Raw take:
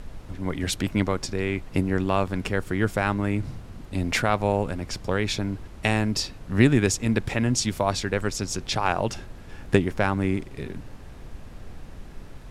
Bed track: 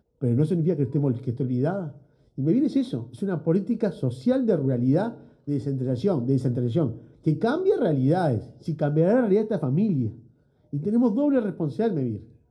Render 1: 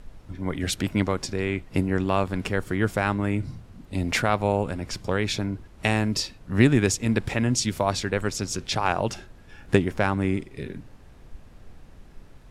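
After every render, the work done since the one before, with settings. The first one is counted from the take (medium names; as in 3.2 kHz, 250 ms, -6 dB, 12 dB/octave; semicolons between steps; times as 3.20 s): noise print and reduce 7 dB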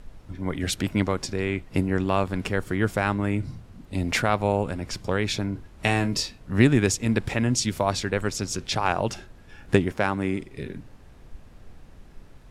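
5.53–6.51 s: doubling 25 ms -8 dB; 9.92–10.41 s: high-pass 160 Hz 6 dB/octave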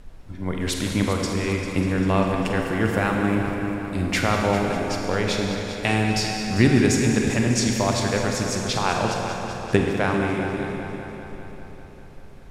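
multi-head delay 198 ms, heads first and second, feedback 61%, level -14 dB; Schroeder reverb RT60 2.4 s, combs from 33 ms, DRR 2 dB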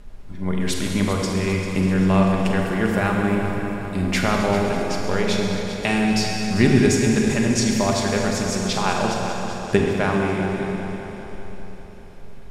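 feedback echo behind a high-pass 129 ms, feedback 84%, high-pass 3.6 kHz, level -14.5 dB; simulated room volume 2700 m³, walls furnished, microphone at 1.3 m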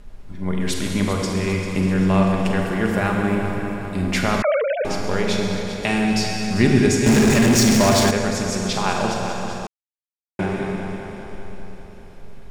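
4.42–4.85 s: formants replaced by sine waves; 7.06–8.11 s: power-law waveshaper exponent 0.5; 9.67–10.39 s: mute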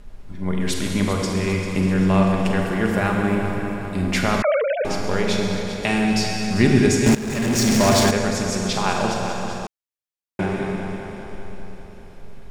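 7.15–7.92 s: fade in, from -17.5 dB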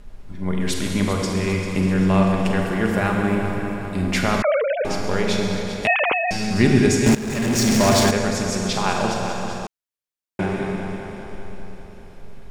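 5.87–6.31 s: formants replaced by sine waves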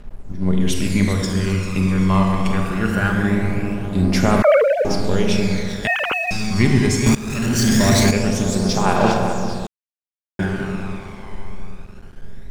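phaser 0.22 Hz, delay 1 ms, feedback 56%; crossover distortion -41.5 dBFS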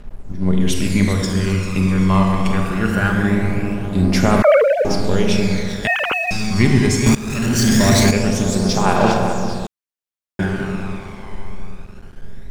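trim +1.5 dB; peak limiter -1 dBFS, peak gain reduction 0.5 dB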